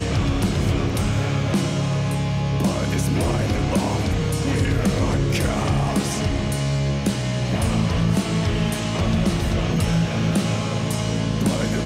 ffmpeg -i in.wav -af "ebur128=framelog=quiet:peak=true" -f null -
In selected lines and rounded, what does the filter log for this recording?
Integrated loudness:
  I:         -21.9 LUFS
  Threshold: -31.9 LUFS
Loudness range:
  LRA:         0.6 LU
  Threshold: -41.8 LUFS
  LRA low:   -22.0 LUFS
  LRA high:  -21.5 LUFS
True peak:
  Peak:       -9.9 dBFS